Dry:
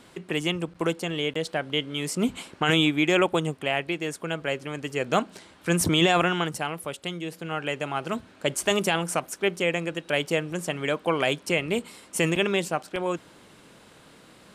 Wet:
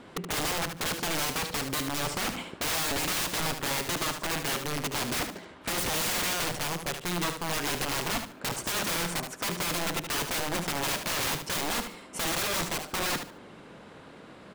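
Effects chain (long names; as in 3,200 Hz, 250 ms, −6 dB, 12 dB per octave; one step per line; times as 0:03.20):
loose part that buzzes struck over −31 dBFS, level −25 dBFS
low-pass filter 1,500 Hz 6 dB per octave
low-shelf EQ 190 Hz −4 dB
in parallel at −1 dB: brickwall limiter −18.5 dBFS, peak gain reduction 7.5 dB
on the sum: wrap-around overflow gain 25 dB
repeating echo 74 ms, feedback 23%, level −8 dB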